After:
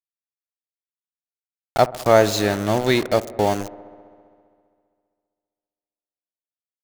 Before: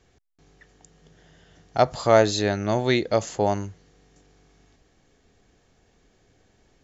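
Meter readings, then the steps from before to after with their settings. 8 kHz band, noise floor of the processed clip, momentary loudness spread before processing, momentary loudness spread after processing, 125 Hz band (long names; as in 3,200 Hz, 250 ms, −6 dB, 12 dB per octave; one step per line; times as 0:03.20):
can't be measured, below −85 dBFS, 12 LU, 11 LU, +1.5 dB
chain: in parallel at +1 dB: downward compressor 4 to 1, threshold −37 dBFS, peak gain reduction 21 dB
on the sum: centre clipping without the shift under −25.5 dBFS
delay with a low-pass on its return 66 ms, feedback 81%, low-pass 1,400 Hz, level −19 dB
level +1.5 dB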